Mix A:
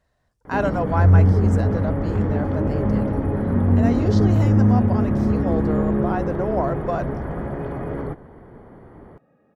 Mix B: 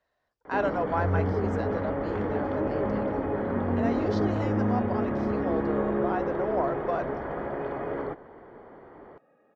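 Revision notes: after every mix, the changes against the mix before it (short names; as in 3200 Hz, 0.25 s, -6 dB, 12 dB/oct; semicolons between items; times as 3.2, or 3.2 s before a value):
speech -4.0 dB; master: add three-band isolator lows -15 dB, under 310 Hz, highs -22 dB, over 5600 Hz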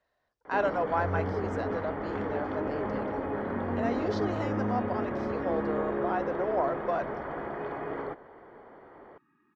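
first sound: add low shelf 440 Hz -6.5 dB; second sound: add Chebyshev band-stop 390–890 Hz, order 5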